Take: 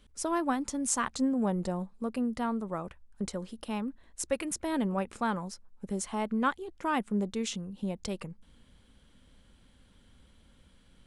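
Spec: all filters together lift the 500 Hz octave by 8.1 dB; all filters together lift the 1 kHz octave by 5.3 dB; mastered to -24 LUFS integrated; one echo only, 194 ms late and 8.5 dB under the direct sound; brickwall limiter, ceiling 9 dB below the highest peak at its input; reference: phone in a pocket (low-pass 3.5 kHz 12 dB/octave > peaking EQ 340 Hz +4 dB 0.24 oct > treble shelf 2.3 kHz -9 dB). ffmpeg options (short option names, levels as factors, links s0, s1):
-af "equalizer=f=500:t=o:g=8.5,equalizer=f=1000:t=o:g=5.5,alimiter=limit=0.119:level=0:latency=1,lowpass=3500,equalizer=f=340:t=o:w=0.24:g=4,highshelf=f=2300:g=-9,aecho=1:1:194:0.376,volume=2"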